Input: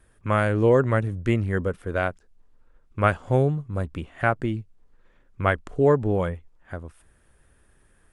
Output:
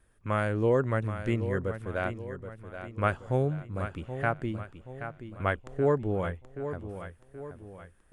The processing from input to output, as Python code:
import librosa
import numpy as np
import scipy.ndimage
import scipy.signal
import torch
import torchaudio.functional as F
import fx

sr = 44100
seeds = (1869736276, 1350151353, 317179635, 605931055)

y = fx.echo_feedback(x, sr, ms=777, feedback_pct=46, wet_db=-10.5)
y = y * 10.0 ** (-6.5 / 20.0)